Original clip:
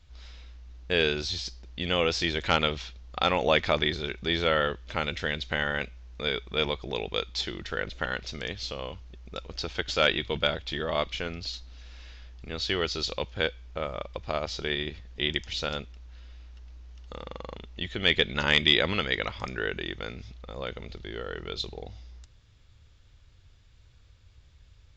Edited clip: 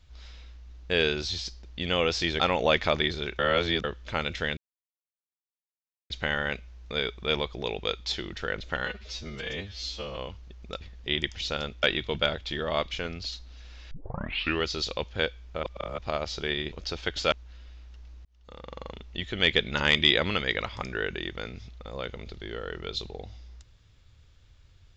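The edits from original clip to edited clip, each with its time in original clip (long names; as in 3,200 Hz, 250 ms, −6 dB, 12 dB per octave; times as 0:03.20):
0:02.40–0:03.22: remove
0:04.21–0:04.66: reverse
0:05.39: splice in silence 1.53 s
0:08.14–0:08.80: time-stretch 2×
0:09.44–0:10.04: swap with 0:14.93–0:15.95
0:12.12: tape start 0.72 s
0:13.84–0:14.19: reverse
0:16.88–0:17.46: fade in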